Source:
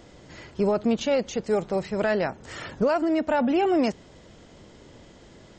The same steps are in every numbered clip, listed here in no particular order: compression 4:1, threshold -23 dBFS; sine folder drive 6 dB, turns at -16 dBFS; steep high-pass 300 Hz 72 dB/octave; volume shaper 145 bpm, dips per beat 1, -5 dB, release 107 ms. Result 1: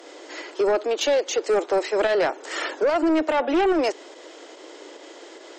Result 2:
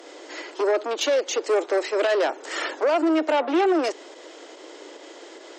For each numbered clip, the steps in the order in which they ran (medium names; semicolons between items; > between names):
compression > steep high-pass > sine folder > volume shaper; volume shaper > compression > sine folder > steep high-pass